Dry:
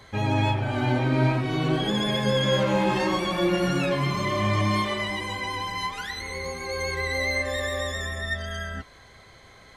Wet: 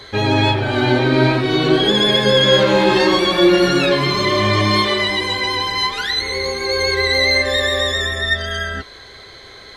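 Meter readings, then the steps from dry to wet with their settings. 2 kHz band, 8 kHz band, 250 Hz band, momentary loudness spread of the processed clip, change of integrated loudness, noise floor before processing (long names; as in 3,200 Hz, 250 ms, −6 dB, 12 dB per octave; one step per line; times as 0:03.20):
+10.5 dB, +8.0 dB, +8.5 dB, 6 LU, +10.0 dB, −51 dBFS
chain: graphic EQ with 15 bands 160 Hz −4 dB, 400 Hz +9 dB, 1,600 Hz +5 dB, 4,000 Hz +12 dB
level +6 dB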